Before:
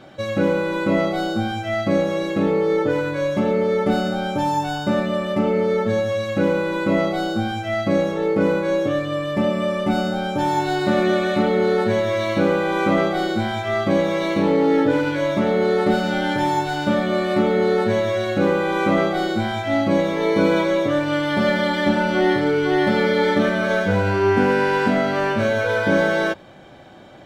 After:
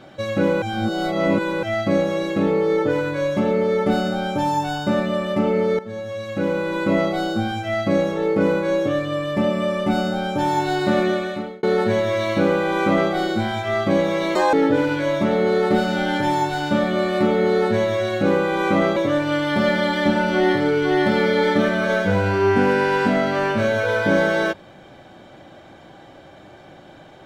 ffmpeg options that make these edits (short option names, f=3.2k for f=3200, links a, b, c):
-filter_complex "[0:a]asplit=8[a][b][c][d][e][f][g][h];[a]atrim=end=0.622[i];[b]atrim=start=0.618:end=1.632,asetpts=PTS-STARTPTS,areverse[j];[c]atrim=start=1.628:end=5.79,asetpts=PTS-STARTPTS,afade=t=out:st=4.158:d=0.004:c=hsin:silence=0.16788[k];[d]atrim=start=5.79:end=11.63,asetpts=PTS-STARTPTS,afade=t=in:d=1.04:silence=0.16788,afade=t=out:st=5.18:d=0.66[l];[e]atrim=start=11.63:end=14.354,asetpts=PTS-STARTPTS,afade=t=in:d=0.004:c=hsin[m];[f]atrim=start=14.35:end=14.69,asetpts=PTS-STARTPTS,asetrate=82026,aresample=44100,atrim=end_sample=8061,asetpts=PTS-STARTPTS[n];[g]atrim=start=14.686:end=19.122[o];[h]atrim=start=20.768[p];[i][j]acrossfade=d=0.004:c1=hsin:c2=hsin[q];[k][l][m]concat=n=3:v=0:a=1[r];[q][r]acrossfade=d=0.004:c1=hsin:c2=hsin[s];[s][n]acrossfade=d=0.004:c1=hsin:c2=hsin[t];[t][o]acrossfade=d=0.004:c1=hsin:c2=hsin[u];[u][p]acrossfade=d=0.004:c1=hsin:c2=hsin"